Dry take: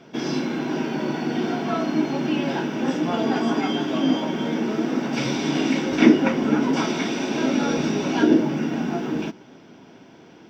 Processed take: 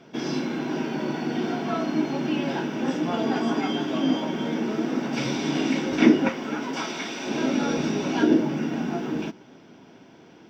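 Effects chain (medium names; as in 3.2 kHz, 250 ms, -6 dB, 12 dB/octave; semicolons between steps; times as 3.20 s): 6.29–7.26 s: bass shelf 470 Hz -11 dB; trim -2.5 dB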